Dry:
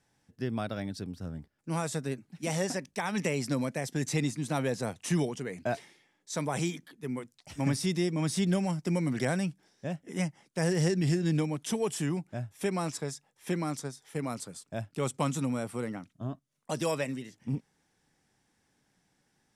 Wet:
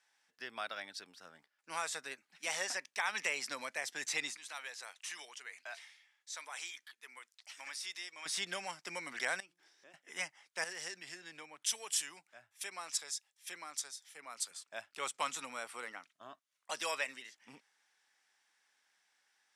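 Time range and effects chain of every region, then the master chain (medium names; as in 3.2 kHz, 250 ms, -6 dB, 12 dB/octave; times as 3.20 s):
4.37–8.26 s: high-pass 1.3 kHz 6 dB/octave + compression 1.5:1, threshold -47 dBFS
9.40–9.94 s: peaking EQ 340 Hz +14.5 dB 0.53 oct + compression 3:1, threshold -49 dBFS + de-hum 175.5 Hz, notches 7
10.64–14.51 s: compression 2:1, threshold -40 dBFS + treble shelf 3.3 kHz +8.5 dB + three bands expanded up and down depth 100%
whole clip: high-pass 1.3 kHz 12 dB/octave; treble shelf 7.3 kHz -11 dB; trim +3.5 dB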